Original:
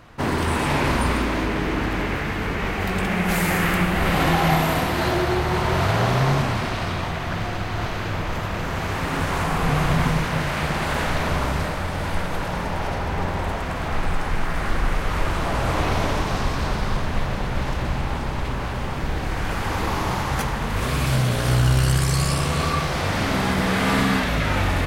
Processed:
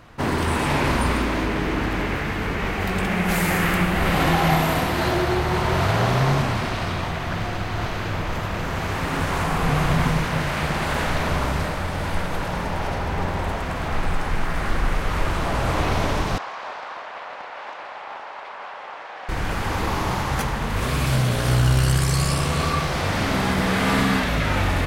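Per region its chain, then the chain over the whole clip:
16.38–19.29 HPF 620 Hz 24 dB/oct + tape spacing loss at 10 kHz 24 dB + Doppler distortion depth 0.17 ms
whole clip: dry

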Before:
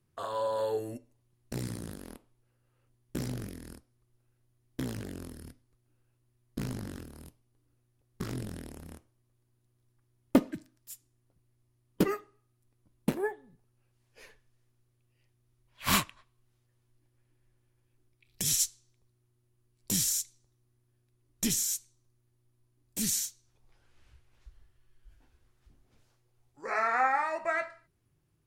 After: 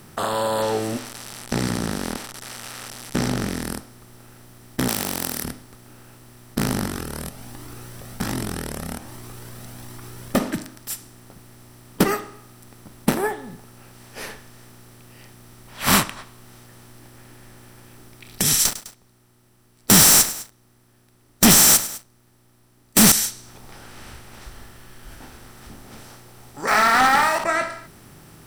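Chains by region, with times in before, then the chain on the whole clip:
0.62–3.63 switching spikes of -36.5 dBFS + LPF 5200 Hz
4.88–5.44 tilt +4 dB/oct + Doppler distortion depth 0.7 ms
6.86–10.4 upward compressor, threshold -38 dBFS + cascading flanger rising 1.3 Hz
18.65–23.12 gate -59 dBFS, range -9 dB + sample leveller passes 5 + feedback echo 0.103 s, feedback 39%, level -24 dB
26.67–27.44 HPF 800 Hz + sample leveller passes 2
whole clip: per-bin compression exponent 0.6; notch 6800 Hz, Q 5.9; gain +5 dB

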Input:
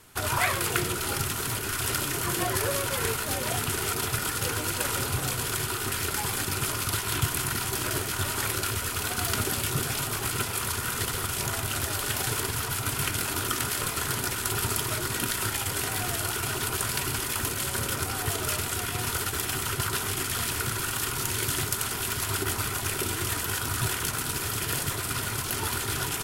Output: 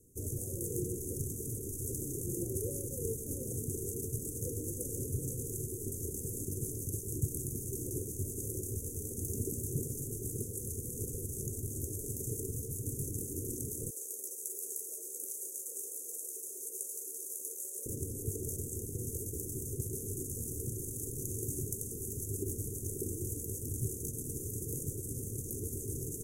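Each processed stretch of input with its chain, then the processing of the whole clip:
13.9–17.86 HPF 540 Hz 24 dB/oct + notch 720 Hz, Q 14 + doubler 13 ms -7 dB
whole clip: Chebyshev band-stop 490–6300 Hz, order 5; high shelf 4500 Hz -5 dB; gain -4.5 dB

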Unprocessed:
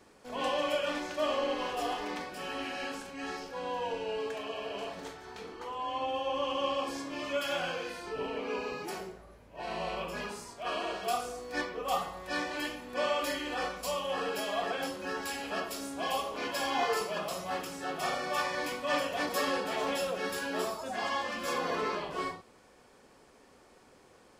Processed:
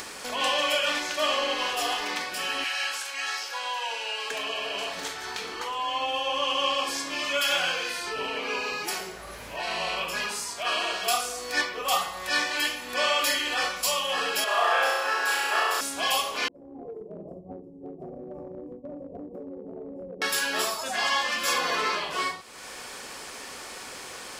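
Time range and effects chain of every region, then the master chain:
2.64–4.31 HPF 760 Hz + doubler 13 ms -13 dB
14.44–15.81 ladder high-pass 350 Hz, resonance 50% + bell 1200 Hz +12.5 dB 1.9 oct + flutter echo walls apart 5.7 m, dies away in 1.2 s
16.48–20.22 expander -31 dBFS + inverse Chebyshev low-pass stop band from 1400 Hz, stop band 60 dB + compressor, threshold -47 dBFS
whole clip: tilt shelf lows -8.5 dB; upward compressor, threshold -33 dBFS; gain +5.5 dB

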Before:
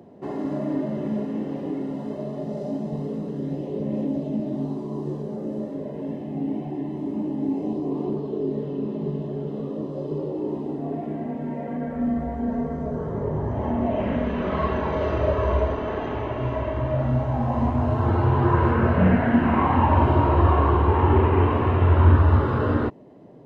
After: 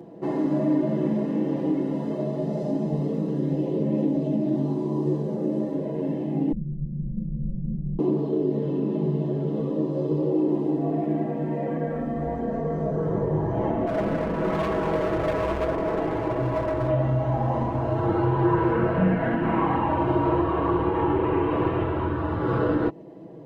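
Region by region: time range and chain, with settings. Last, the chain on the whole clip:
6.52–7.99 minimum comb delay 1.5 ms + inverse Chebyshev low-pass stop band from 1300 Hz, stop band 80 dB + comb 5.5 ms, depth 91%
13.87–16.89 LPF 1900 Hz + hard clip -25 dBFS
whole clip: compressor 3:1, threshold -23 dBFS; bell 370 Hz +5 dB 1.3 oct; comb 6.1 ms, depth 71%

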